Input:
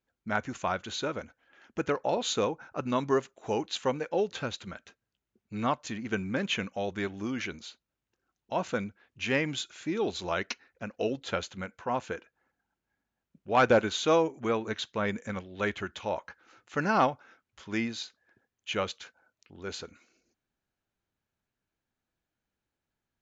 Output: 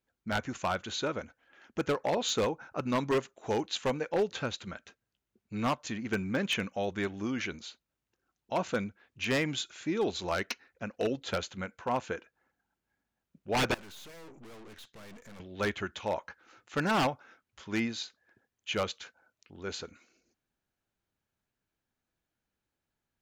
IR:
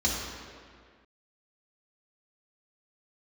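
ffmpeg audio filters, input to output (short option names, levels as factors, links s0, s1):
-filter_complex "[0:a]aeval=exprs='0.0841*(abs(mod(val(0)/0.0841+3,4)-2)-1)':c=same,asettb=1/sr,asplit=3[s0][s1][s2];[s0]atrim=end=13.744[s3];[s1]atrim=start=13.74:end=15.4,asetpts=PTS-STARTPTS,afade=t=in:d=0.004:c=qsin,afade=t=out:st=1.656:d=0.004:c=qsin,aeval=exprs='(tanh(282*val(0)+0.75)-tanh(0.75))/282':c=same[s4];[s2]atrim=start=15.396[s5];[s3][s4]acrossfade=d=0.004:c1=hsin:c2=qsin[s6];[s6][s5]acrossfade=d=0.004:c1=qsin:c2=hsin"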